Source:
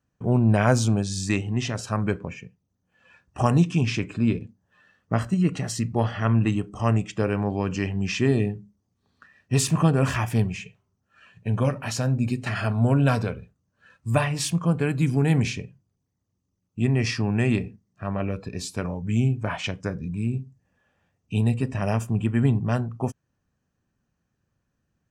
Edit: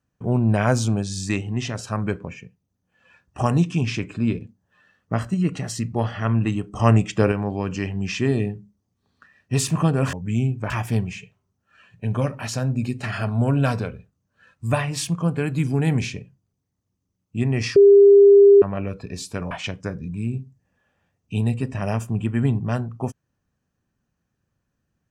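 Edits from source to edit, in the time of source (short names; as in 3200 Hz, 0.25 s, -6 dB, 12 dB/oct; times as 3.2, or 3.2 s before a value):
6.74–7.32 gain +6 dB
17.19–18.05 bleep 401 Hz -7 dBFS
18.94–19.51 move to 10.13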